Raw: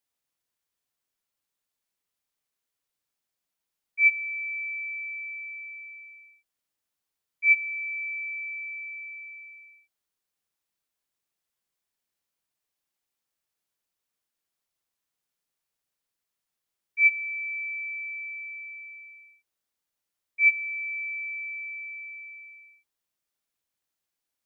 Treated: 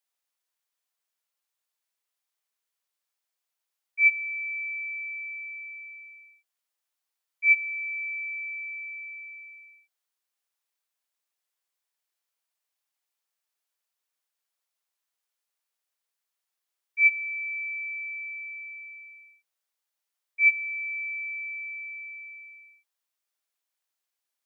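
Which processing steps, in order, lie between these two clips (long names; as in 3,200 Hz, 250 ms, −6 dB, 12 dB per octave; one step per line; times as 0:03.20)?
high-pass filter 550 Hz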